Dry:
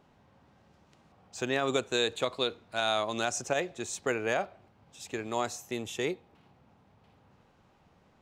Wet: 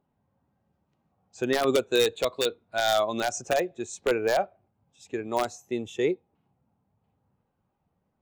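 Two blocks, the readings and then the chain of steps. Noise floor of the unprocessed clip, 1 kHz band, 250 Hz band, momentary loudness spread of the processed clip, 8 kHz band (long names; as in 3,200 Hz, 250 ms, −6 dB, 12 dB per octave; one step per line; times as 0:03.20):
−65 dBFS, +4.5 dB, +5.0 dB, 10 LU, +1.0 dB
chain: wrap-around overflow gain 18 dB
every bin expanded away from the loudest bin 1.5 to 1
level +6 dB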